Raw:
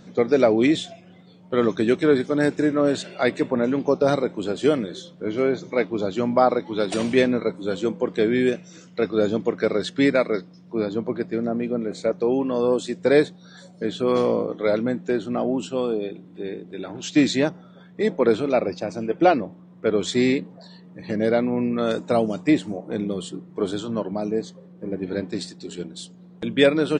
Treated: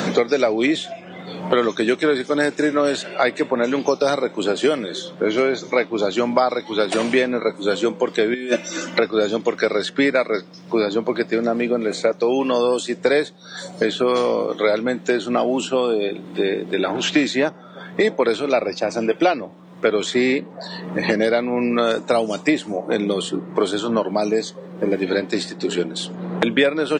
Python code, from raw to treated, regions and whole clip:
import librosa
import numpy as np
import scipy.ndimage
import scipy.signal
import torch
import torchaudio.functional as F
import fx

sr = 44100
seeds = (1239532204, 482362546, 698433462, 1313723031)

y = fx.chain(x, sr, fx.highpass(hz=100.0, slope=12),
    fx.comb(ms=3.4, depth=0.98),
    fx.over_compress(threshold_db=-24.0, ratio=-0.5), at=(8.34, 9.0))
y = fx.highpass(y, sr, hz=600.0, slope=6)
y = fx.band_squash(y, sr, depth_pct=100)
y = F.gain(torch.from_numpy(y), 6.5).numpy()